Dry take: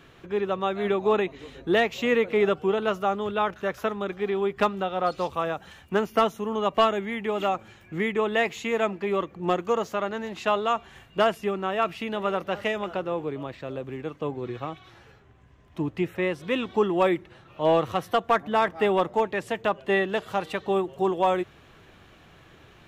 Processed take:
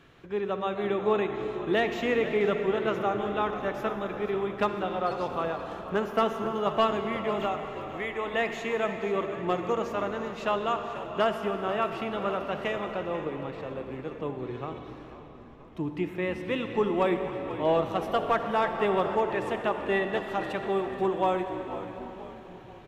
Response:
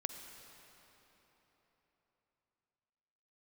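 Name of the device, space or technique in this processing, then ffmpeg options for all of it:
swimming-pool hall: -filter_complex "[0:a]asettb=1/sr,asplit=3[a][b][c];[a]atrim=end=7.484[d];[b]atrim=start=7.48:end=8.34,asetpts=PTS-STARTPTS,afade=t=in:d=0.004:c=qsin,afade=t=out:st=0.856:d=0.004:c=qsin,highpass=f=600:p=1[e];[c]atrim=start=8.336[f];[d][e]acrossfade=d=0.004:c1=hsin:c2=qsin[g];[g][f]acrossfade=d=0.004:c1=qsin:c2=hsin[h];[1:a]atrim=start_sample=2205[i];[h][i]afir=irnorm=-1:irlink=0,highshelf=f=5k:g=-4.5,asplit=6[j][k][l][m][n][o];[k]adelay=487,afreqshift=-68,volume=-13.5dB[p];[l]adelay=974,afreqshift=-136,volume=-19.2dB[q];[m]adelay=1461,afreqshift=-204,volume=-24.9dB[r];[n]adelay=1948,afreqshift=-272,volume=-30.5dB[s];[o]adelay=2435,afreqshift=-340,volume=-36.2dB[t];[j][p][q][r][s][t]amix=inputs=6:normalize=0,volume=-2.5dB"

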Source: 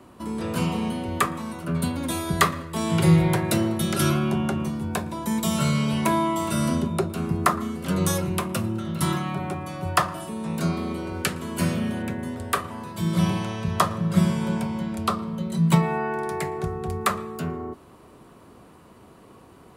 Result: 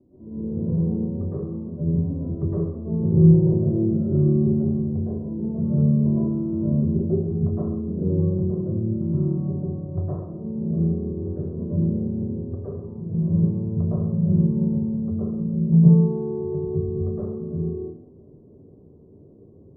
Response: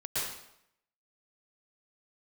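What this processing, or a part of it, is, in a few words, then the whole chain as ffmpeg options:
next room: -filter_complex "[0:a]lowpass=f=450:w=0.5412,lowpass=f=450:w=1.3066[a];[1:a]atrim=start_sample=2205[b];[a][b]afir=irnorm=-1:irlink=0,asettb=1/sr,asplit=3[c][d][e];[c]atrim=end=10.594[f];[d]atrim=start=10.59:end=11.31,asetpts=PTS-STARTPTS,afade=t=in:d=0.004:c=qsin,afade=t=out:st=0.716:d=0.004:c=qsin,lowpass=1.3k[g];[e]atrim=start=11.306[h];[f][g]acrossfade=d=0.004:c1=hsin:c2=qsin[i];[i][h]acrossfade=d=0.004:c1=qsin:c2=hsin,volume=-3dB"

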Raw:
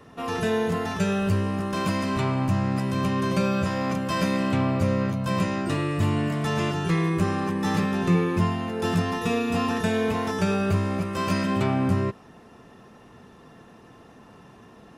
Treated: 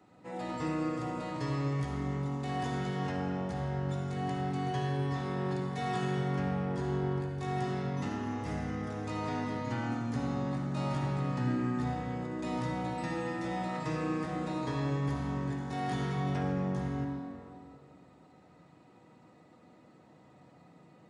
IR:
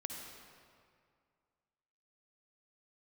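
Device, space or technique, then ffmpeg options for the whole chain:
slowed and reverbed: -filter_complex "[0:a]asetrate=31311,aresample=44100[a];[1:a]atrim=start_sample=2205[b];[a][b]afir=irnorm=-1:irlink=0,highpass=140,volume=-7.5dB"

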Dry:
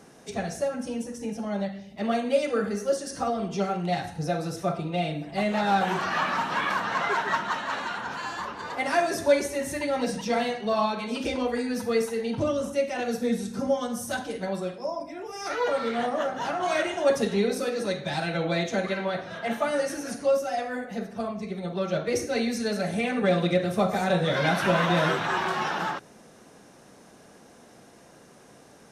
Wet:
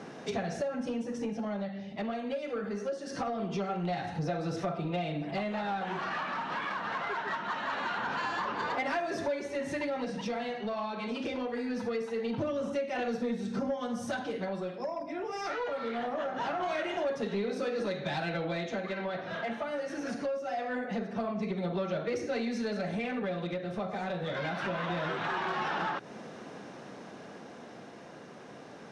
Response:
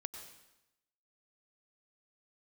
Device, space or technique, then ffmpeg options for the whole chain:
AM radio: -af "highpass=120,lowpass=3.9k,acompressor=threshold=-36dB:ratio=6,asoftclip=type=tanh:threshold=-31dB,tremolo=f=0.23:d=0.29,volume=7.5dB"

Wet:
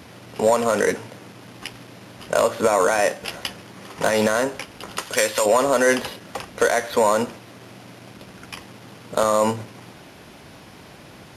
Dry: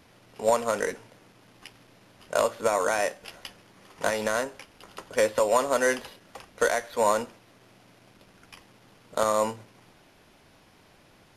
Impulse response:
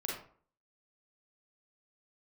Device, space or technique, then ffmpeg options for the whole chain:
mastering chain: -filter_complex "[0:a]highpass=54,equalizer=f=160:t=o:w=2.3:g=3,acompressor=threshold=-25dB:ratio=2,asoftclip=type=tanh:threshold=-13.5dB,asoftclip=type=hard:threshold=-17dB,alimiter=level_in=20dB:limit=-1dB:release=50:level=0:latency=1,asettb=1/sr,asplit=3[a][b][c];[a]atrim=end=4.984[d];[b]atrim=start=4.98:end=5.46,asetpts=PTS-STARTPTS,afade=t=in:d=0.004:c=qsin,afade=t=out:st=0.476:d=0.004:c=qsin,tiltshelf=f=1.2k:g=-7.5[e];[c]atrim=start=5.456[f];[d][e]acrossfade=d=0.004:c1=hsin:c2=qsin[g];[g][f]acrossfade=d=0.004:c1=qsin:c2=hsin,volume=-7.5dB"

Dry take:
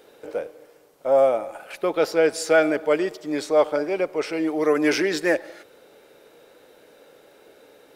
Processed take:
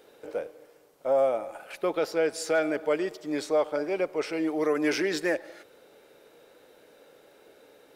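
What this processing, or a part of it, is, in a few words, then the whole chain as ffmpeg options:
clipper into limiter: -af "asoftclip=type=hard:threshold=-8dB,alimiter=limit=-12dB:level=0:latency=1:release=284,volume=-4dB"

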